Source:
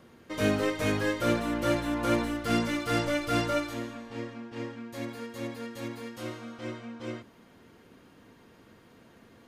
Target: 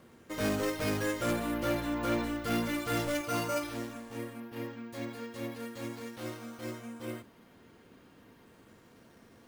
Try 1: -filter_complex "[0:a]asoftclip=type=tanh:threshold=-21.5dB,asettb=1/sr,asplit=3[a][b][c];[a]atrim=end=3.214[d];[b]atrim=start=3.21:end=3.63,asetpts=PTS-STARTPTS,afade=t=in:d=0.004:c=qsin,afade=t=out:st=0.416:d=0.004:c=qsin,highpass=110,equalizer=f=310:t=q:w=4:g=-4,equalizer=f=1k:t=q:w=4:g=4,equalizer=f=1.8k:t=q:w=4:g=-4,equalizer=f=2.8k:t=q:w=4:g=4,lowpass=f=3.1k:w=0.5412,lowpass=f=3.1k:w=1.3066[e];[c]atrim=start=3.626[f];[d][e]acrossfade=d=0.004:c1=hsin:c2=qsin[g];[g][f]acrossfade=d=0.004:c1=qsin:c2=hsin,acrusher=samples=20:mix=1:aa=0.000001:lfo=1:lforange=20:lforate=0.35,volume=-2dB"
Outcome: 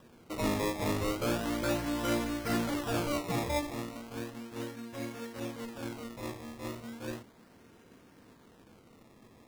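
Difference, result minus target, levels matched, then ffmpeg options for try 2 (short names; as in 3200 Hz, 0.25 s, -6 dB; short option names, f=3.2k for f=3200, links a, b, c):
decimation with a swept rate: distortion +12 dB
-filter_complex "[0:a]asoftclip=type=tanh:threshold=-21.5dB,asettb=1/sr,asplit=3[a][b][c];[a]atrim=end=3.214[d];[b]atrim=start=3.21:end=3.63,asetpts=PTS-STARTPTS,afade=t=in:d=0.004:c=qsin,afade=t=out:st=0.416:d=0.004:c=qsin,highpass=110,equalizer=f=310:t=q:w=4:g=-4,equalizer=f=1k:t=q:w=4:g=4,equalizer=f=1.8k:t=q:w=4:g=-4,equalizer=f=2.8k:t=q:w=4:g=4,lowpass=f=3.1k:w=0.5412,lowpass=f=3.1k:w=1.3066[e];[c]atrim=start=3.626[f];[d][e]acrossfade=d=0.004:c1=hsin:c2=qsin[g];[g][f]acrossfade=d=0.004:c1=qsin:c2=hsin,acrusher=samples=4:mix=1:aa=0.000001:lfo=1:lforange=4:lforate=0.35,volume=-2dB"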